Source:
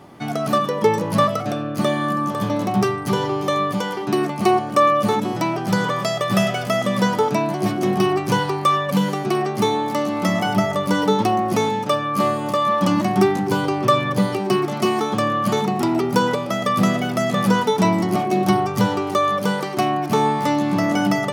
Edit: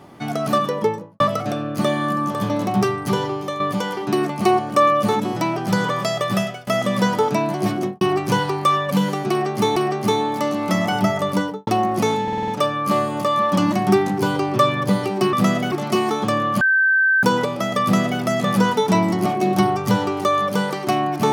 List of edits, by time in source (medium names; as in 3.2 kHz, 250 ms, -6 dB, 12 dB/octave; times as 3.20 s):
0.67–1.20 s: studio fade out
3.14–3.60 s: fade out, to -8.5 dB
6.25–6.67 s: fade out, to -22.5 dB
7.76–8.01 s: studio fade out
9.30–9.76 s: loop, 2 plays
10.85–11.21 s: studio fade out
11.77 s: stutter 0.05 s, 6 plays
15.51–16.13 s: bleep 1.55 kHz -13 dBFS
16.72–17.11 s: copy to 14.62 s